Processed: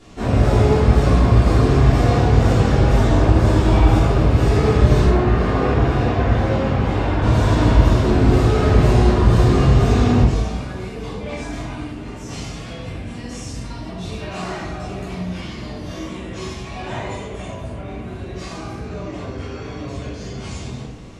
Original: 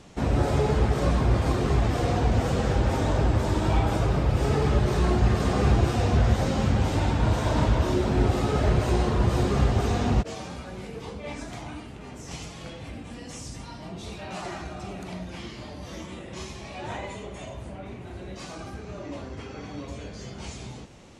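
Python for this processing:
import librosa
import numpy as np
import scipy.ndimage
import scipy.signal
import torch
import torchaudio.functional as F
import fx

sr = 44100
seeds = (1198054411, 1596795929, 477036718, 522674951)

y = fx.bass_treble(x, sr, bass_db=-6, treble_db=-13, at=(5.05, 7.22))
y = fx.room_shoebox(y, sr, seeds[0], volume_m3=210.0, walls='mixed', distance_m=3.2)
y = y * librosa.db_to_amplitude(-3.5)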